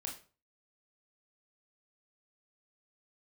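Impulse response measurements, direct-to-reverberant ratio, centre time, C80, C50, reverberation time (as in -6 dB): -0.5 dB, 23 ms, 13.5 dB, 8.5 dB, 0.40 s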